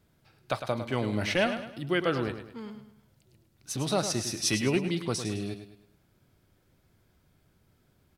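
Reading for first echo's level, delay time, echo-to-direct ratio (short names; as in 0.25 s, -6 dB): -9.5 dB, 0.105 s, -9.0 dB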